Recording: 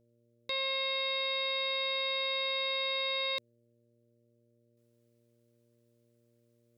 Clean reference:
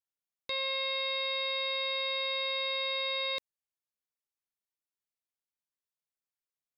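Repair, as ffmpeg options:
-af "bandreject=f=117.8:t=h:w=4,bandreject=f=235.6:t=h:w=4,bandreject=f=353.4:t=h:w=4,bandreject=f=471.2:t=h:w=4,bandreject=f=589:t=h:w=4,asetnsamples=n=441:p=0,asendcmd='4.77 volume volume -10dB',volume=1"

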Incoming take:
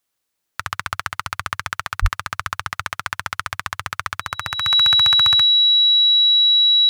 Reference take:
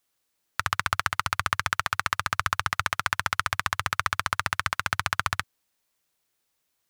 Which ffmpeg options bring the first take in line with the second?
-filter_complex "[0:a]bandreject=f=3900:w=30,asplit=3[s0][s1][s2];[s0]afade=t=out:st=2.01:d=0.02[s3];[s1]highpass=f=140:w=0.5412,highpass=f=140:w=1.3066,afade=t=in:st=2.01:d=0.02,afade=t=out:st=2.13:d=0.02[s4];[s2]afade=t=in:st=2.13:d=0.02[s5];[s3][s4][s5]amix=inputs=3:normalize=0,asetnsamples=n=441:p=0,asendcmd='5.44 volume volume -3dB',volume=1"

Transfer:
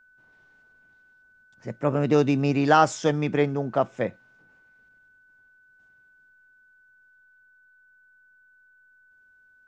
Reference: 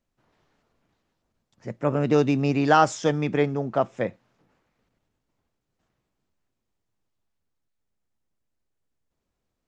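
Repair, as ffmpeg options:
-af "bandreject=f=1500:w=30"

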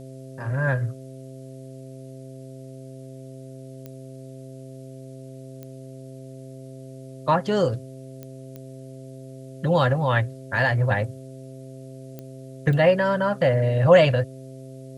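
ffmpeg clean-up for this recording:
-af "adeclick=t=4,bandreject=f=131.9:t=h:w=4,bandreject=f=263.8:t=h:w=4,bandreject=f=395.7:t=h:w=4,bandreject=f=527.6:t=h:w=4,bandreject=f=659.5:t=h:w=4,agate=range=0.0891:threshold=0.0224"

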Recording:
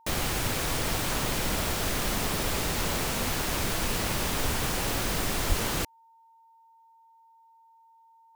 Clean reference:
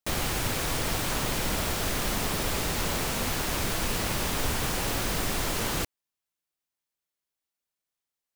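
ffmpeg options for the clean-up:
-filter_complex "[0:a]bandreject=f=910:w=30,asplit=3[s0][s1][s2];[s0]afade=t=out:st=5.48:d=0.02[s3];[s1]highpass=f=140:w=0.5412,highpass=f=140:w=1.3066,afade=t=in:st=5.48:d=0.02,afade=t=out:st=5.6:d=0.02[s4];[s2]afade=t=in:st=5.6:d=0.02[s5];[s3][s4][s5]amix=inputs=3:normalize=0"

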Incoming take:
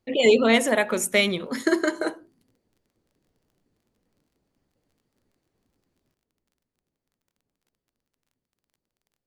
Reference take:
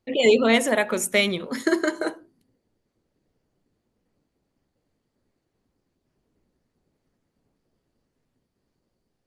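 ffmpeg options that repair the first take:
-af "adeclick=t=4,asetnsamples=n=441:p=0,asendcmd='6.14 volume volume 11.5dB',volume=1"

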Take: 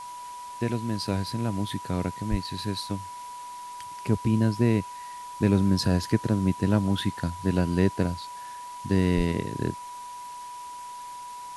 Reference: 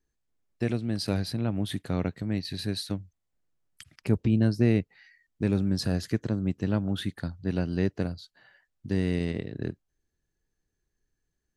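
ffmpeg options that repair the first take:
-filter_complex "[0:a]bandreject=f=980:w=30,asplit=3[s0][s1][s2];[s0]afade=t=out:st=2.3:d=0.02[s3];[s1]highpass=f=140:w=0.5412,highpass=f=140:w=1.3066,afade=t=in:st=2.3:d=0.02,afade=t=out:st=2.42:d=0.02[s4];[s2]afade=t=in:st=2.42:d=0.02[s5];[s3][s4][s5]amix=inputs=3:normalize=0,asplit=3[s6][s7][s8];[s6]afade=t=out:st=9.16:d=0.02[s9];[s7]highpass=f=140:w=0.5412,highpass=f=140:w=1.3066,afade=t=in:st=9.16:d=0.02,afade=t=out:st=9.28:d=0.02[s10];[s8]afade=t=in:st=9.28:d=0.02[s11];[s9][s10][s11]amix=inputs=3:normalize=0,afwtdn=0.004,asetnsamples=n=441:p=0,asendcmd='5.1 volume volume -4dB',volume=1"

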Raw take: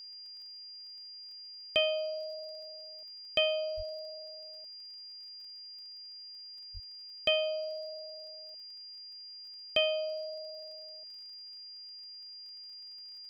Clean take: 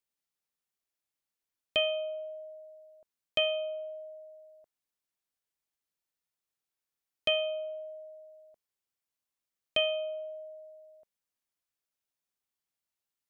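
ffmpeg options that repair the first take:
-filter_complex "[0:a]adeclick=t=4,bandreject=f=4800:w=30,asplit=3[s0][s1][s2];[s0]afade=t=out:st=3.76:d=0.02[s3];[s1]highpass=f=140:w=0.5412,highpass=f=140:w=1.3066,afade=t=in:st=3.76:d=0.02,afade=t=out:st=3.88:d=0.02[s4];[s2]afade=t=in:st=3.88:d=0.02[s5];[s3][s4][s5]amix=inputs=3:normalize=0,asplit=3[s6][s7][s8];[s6]afade=t=out:st=6.73:d=0.02[s9];[s7]highpass=f=140:w=0.5412,highpass=f=140:w=1.3066,afade=t=in:st=6.73:d=0.02,afade=t=out:st=6.85:d=0.02[s10];[s8]afade=t=in:st=6.85:d=0.02[s11];[s9][s10][s11]amix=inputs=3:normalize=0,afftdn=nr=30:nf=-48"

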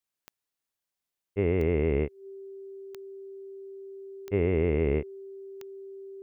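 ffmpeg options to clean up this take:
-af "adeclick=t=4,bandreject=f=390:w=30"

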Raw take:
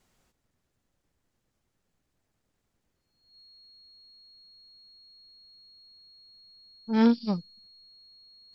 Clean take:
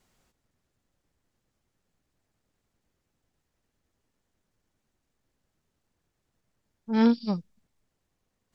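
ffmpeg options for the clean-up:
-af "bandreject=f=4300:w=30"

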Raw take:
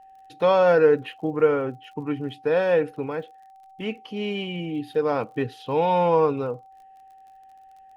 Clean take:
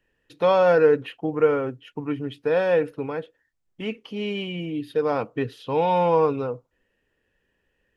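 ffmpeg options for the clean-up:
-af "adeclick=t=4,bandreject=f=770:w=30"

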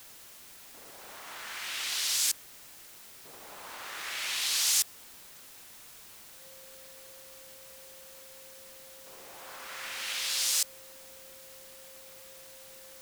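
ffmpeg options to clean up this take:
-af "bandreject=f=530:w=30,afwtdn=0.0028"

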